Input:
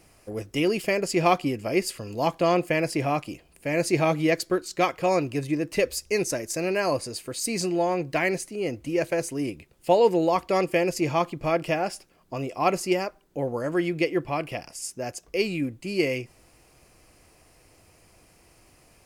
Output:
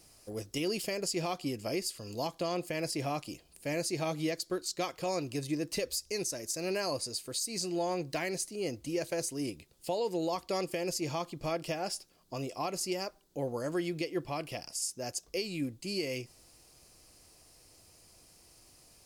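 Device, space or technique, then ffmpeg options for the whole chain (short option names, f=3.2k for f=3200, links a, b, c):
over-bright horn tweeter: -af "highshelf=f=3.1k:t=q:w=1.5:g=7.5,alimiter=limit=-17dB:level=0:latency=1:release=199,volume=-6.5dB"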